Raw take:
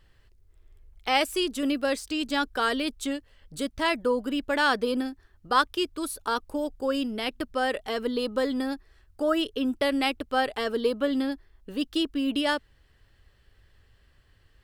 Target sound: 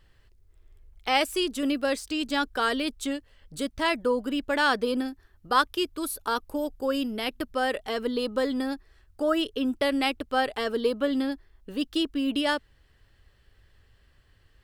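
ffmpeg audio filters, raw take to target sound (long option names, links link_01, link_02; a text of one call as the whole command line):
ffmpeg -i in.wav -filter_complex "[0:a]asettb=1/sr,asplit=3[link_01][link_02][link_03];[link_01]atrim=end=5.084[link_04];[link_02]atrim=start=5.08:end=7.77,asetpts=PTS-STARTPTS,afade=type=in:duration=0.004:curve=qsin,afade=type=out:start_time=2.686:duration=0.004:curve=qsin,equalizer=frequency=12000:width=5.7:gain=10[link_05];[link_03]atrim=start=7.766[link_06];[link_04][link_05]acrossfade=duration=0.004:curve1=hsin:curve2=qsin[link_07];[link_07][link_06]acrossfade=duration=0.004:curve1=qsin:curve2=hsin" out.wav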